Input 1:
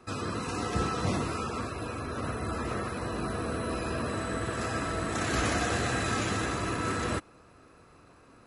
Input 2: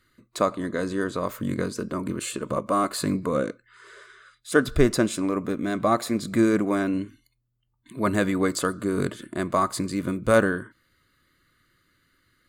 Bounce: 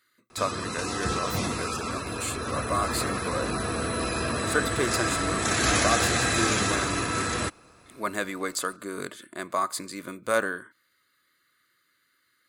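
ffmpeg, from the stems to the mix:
-filter_complex "[0:a]highshelf=f=2100:g=9,dynaudnorm=f=300:g=13:m=1.5,adelay=300,volume=0.891[s0];[1:a]highpass=f=890:p=1,highshelf=f=12000:g=5,volume=0.891[s1];[s0][s1]amix=inputs=2:normalize=0,bandreject=f=2900:w=18"

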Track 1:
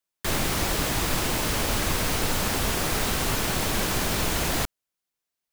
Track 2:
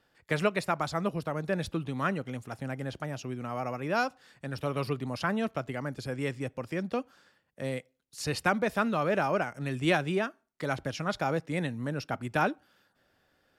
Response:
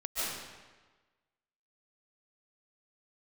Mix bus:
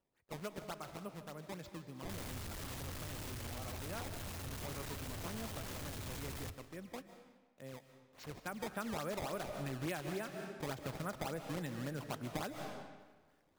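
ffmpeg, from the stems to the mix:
-filter_complex "[0:a]equalizer=f=91:w=1.5:g=13.5,asoftclip=type=tanh:threshold=0.0224,adelay=1850,volume=0.266,asplit=2[s0][s1];[s1]volume=0.1[s2];[1:a]acrusher=samples=18:mix=1:aa=0.000001:lfo=1:lforange=28.8:lforate=3.5,volume=0.473,afade=t=in:st=8.52:d=0.46:silence=0.298538,asplit=2[s3][s4];[s4]volume=0.188[s5];[2:a]atrim=start_sample=2205[s6];[s2][s5]amix=inputs=2:normalize=0[s7];[s7][s6]afir=irnorm=-1:irlink=0[s8];[s0][s3][s8]amix=inputs=3:normalize=0,acompressor=threshold=0.0141:ratio=6"

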